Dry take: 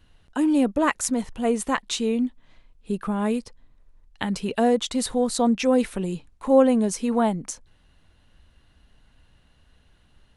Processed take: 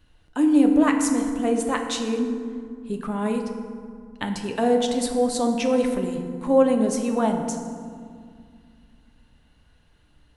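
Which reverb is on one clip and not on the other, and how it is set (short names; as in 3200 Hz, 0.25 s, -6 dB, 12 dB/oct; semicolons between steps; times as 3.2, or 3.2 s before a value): FDN reverb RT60 2.1 s, low-frequency decay 1.4×, high-frequency decay 0.5×, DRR 3.5 dB; gain -2 dB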